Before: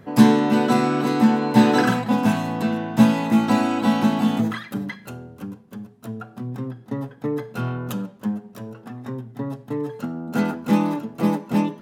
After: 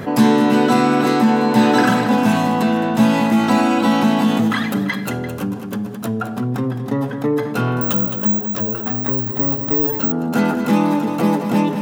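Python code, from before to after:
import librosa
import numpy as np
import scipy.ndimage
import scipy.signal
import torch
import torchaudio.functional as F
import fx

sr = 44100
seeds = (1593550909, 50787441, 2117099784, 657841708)

y = fx.low_shelf(x, sr, hz=120.0, db=-7.5)
y = fx.echo_multitap(y, sr, ms=(214, 343), db=(-14.5, -17.5))
y = fx.resample_bad(y, sr, factor=2, down='filtered', up='zero_stuff', at=(7.81, 10.12))
y = fx.env_flatten(y, sr, amount_pct=50)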